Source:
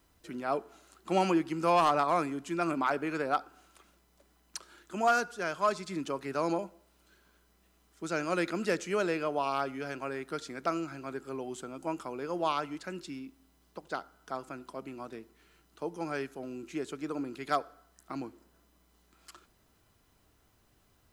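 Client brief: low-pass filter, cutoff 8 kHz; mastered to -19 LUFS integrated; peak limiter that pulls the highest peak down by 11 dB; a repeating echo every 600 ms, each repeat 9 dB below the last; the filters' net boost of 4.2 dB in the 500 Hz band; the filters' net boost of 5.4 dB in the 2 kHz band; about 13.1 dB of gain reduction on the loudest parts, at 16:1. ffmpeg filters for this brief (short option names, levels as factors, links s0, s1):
-af "lowpass=8000,equalizer=f=500:t=o:g=5,equalizer=f=2000:t=o:g=7.5,acompressor=threshold=0.0282:ratio=16,alimiter=level_in=2.24:limit=0.0631:level=0:latency=1,volume=0.447,aecho=1:1:600|1200|1800|2400:0.355|0.124|0.0435|0.0152,volume=13.3"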